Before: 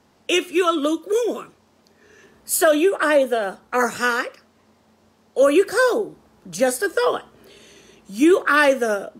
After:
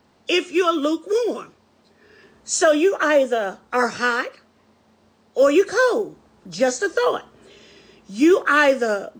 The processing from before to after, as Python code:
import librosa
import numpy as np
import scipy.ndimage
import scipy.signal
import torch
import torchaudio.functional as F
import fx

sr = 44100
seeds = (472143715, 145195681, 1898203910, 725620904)

y = fx.freq_compress(x, sr, knee_hz=3300.0, ratio=1.5)
y = fx.quant_companded(y, sr, bits=8)